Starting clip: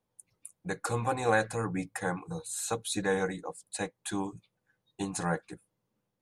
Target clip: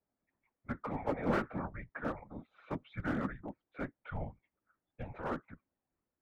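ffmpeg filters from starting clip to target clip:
-af "highpass=f=280:t=q:w=0.5412,highpass=f=280:t=q:w=1.307,lowpass=f=2500:t=q:w=0.5176,lowpass=f=2500:t=q:w=0.7071,lowpass=f=2500:t=q:w=1.932,afreqshift=-240,aeval=exprs='clip(val(0),-1,0.0447)':c=same,afftfilt=real='hypot(re,im)*cos(2*PI*random(0))':imag='hypot(re,im)*sin(2*PI*random(1))':win_size=512:overlap=0.75,volume=1.33"

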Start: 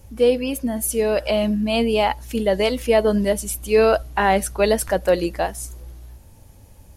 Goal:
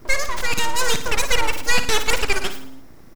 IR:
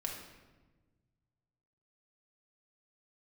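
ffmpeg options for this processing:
-af "equalizer=f=2400:w=6:g=8,aeval=exprs='abs(val(0))':c=same,aecho=1:1:124|248|372|496|620|744:0.299|0.158|0.0839|0.0444|0.0236|0.0125,asetrate=97461,aresample=44100,volume=1.12"

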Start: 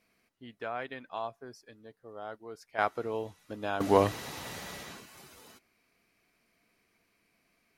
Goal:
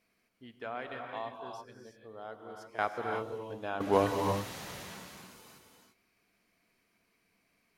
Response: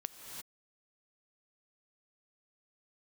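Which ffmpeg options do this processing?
-filter_complex "[0:a]asettb=1/sr,asplit=3[s0][s1][s2];[s0]atrim=end=2.364[s3];[s1]atrim=start=2.36:end=2.79,asetpts=PTS-STARTPTS,afade=t=in:d=0.004:c=qsin,afade=t=out:st=0.426:d=0.004:c=qsin,acrossover=split=360|3000[s4][s5][s6];[s5]acompressor=threshold=0.00447:ratio=6[s7];[s4][s7][s6]amix=inputs=3:normalize=0[s8];[s2]atrim=start=2.786[s9];[s3][s8]acrossfade=d=0.004:c1=hsin:c2=qsin[s10];[s10][s9]acrossfade=d=0.004:c1=qsin:c2=hsin,asettb=1/sr,asplit=3[s11][s12][s13];[s11]atrim=end=3.384[s14];[s12]atrim=start=3.38:end=3.93,asetpts=PTS-STARTPTS,afade=t=in:d=0.004:c=qsin,afade=t=out:st=0.546:d=0.004:c=qsin,bass=f=250:g=-3,treble=f=4000:g=-8[s15];[s13]atrim=start=3.926[s16];[s14][s15]acrossfade=d=0.004:c1=hsin:c2=qsin[s17];[s17][s16]acrossfade=d=0.004:c1=qsin:c2=hsin[s18];[1:a]atrim=start_sample=2205[s19];[s18][s19]afir=irnorm=-1:irlink=0"

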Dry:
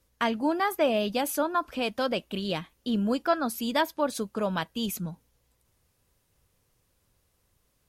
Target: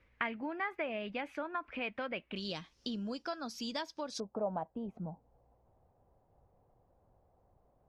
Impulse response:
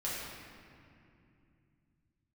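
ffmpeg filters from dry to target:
-af "acompressor=threshold=0.00708:ratio=3,asetnsamples=n=441:p=0,asendcmd='2.36 lowpass f 5400;4.2 lowpass f 750',lowpass=f=2200:t=q:w=4.1,volume=1.12"

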